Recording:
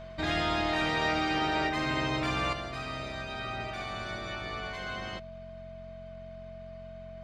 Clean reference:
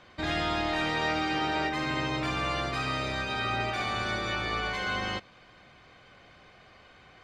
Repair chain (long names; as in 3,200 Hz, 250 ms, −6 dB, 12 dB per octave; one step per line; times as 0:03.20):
hum removal 45 Hz, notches 5
notch filter 650 Hz, Q 30
level 0 dB, from 0:02.53 +7 dB